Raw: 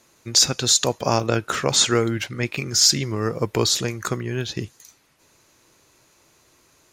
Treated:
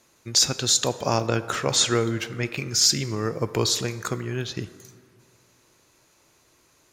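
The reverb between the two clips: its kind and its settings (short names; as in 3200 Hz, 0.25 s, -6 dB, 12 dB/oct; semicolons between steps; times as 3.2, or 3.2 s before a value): plate-style reverb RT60 2.1 s, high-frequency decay 0.45×, DRR 13 dB; gain -3 dB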